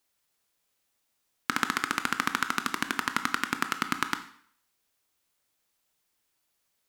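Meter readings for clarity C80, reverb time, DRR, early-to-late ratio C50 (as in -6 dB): 15.5 dB, 0.60 s, 8.5 dB, 12.0 dB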